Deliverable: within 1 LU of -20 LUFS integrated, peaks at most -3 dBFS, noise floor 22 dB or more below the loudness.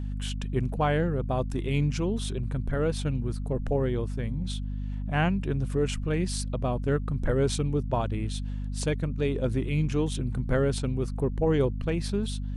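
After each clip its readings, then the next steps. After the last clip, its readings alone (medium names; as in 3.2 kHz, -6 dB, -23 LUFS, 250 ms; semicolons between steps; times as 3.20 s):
hum 50 Hz; highest harmonic 250 Hz; hum level -29 dBFS; loudness -28.5 LUFS; peak level -13.5 dBFS; loudness target -20.0 LUFS
-> hum notches 50/100/150/200/250 Hz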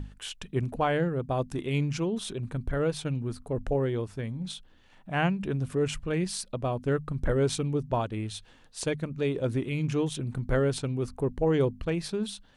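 hum not found; loudness -30.0 LUFS; peak level -14.0 dBFS; loudness target -20.0 LUFS
-> trim +10 dB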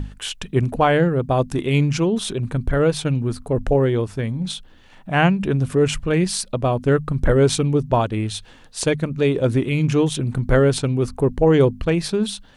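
loudness -20.0 LUFS; peak level -4.0 dBFS; noise floor -47 dBFS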